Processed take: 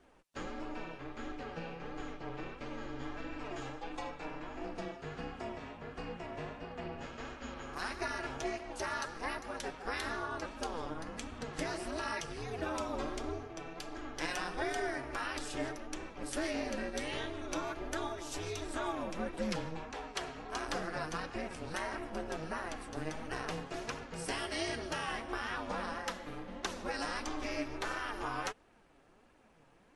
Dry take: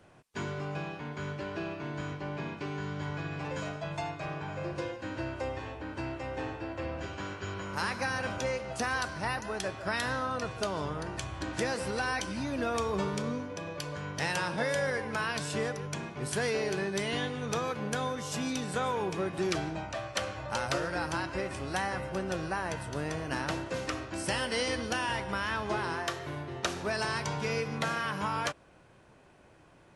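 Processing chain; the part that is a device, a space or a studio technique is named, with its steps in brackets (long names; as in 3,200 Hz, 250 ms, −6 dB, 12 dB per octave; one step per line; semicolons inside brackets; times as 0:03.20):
alien voice (ring modulation 160 Hz; flanger 1.5 Hz, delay 2.5 ms, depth 5.1 ms, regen +39%)
level +1 dB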